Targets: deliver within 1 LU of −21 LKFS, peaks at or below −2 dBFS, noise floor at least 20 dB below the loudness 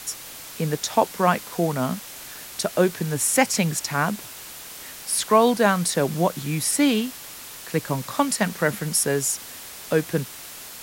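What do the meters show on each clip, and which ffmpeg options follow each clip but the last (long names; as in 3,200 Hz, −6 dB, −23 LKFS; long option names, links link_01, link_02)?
background noise floor −40 dBFS; target noise floor −43 dBFS; integrated loudness −23.0 LKFS; sample peak −4.0 dBFS; target loudness −21.0 LKFS
→ -af "afftdn=noise_reduction=6:noise_floor=-40"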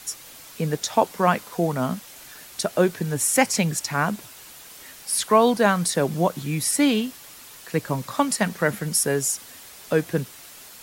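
background noise floor −44 dBFS; integrated loudness −23.0 LKFS; sample peak −4.5 dBFS; target loudness −21.0 LKFS
→ -af "volume=2dB"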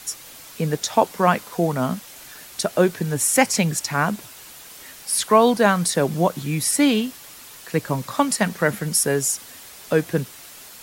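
integrated loudness −21.0 LKFS; sample peak −2.5 dBFS; background noise floor −42 dBFS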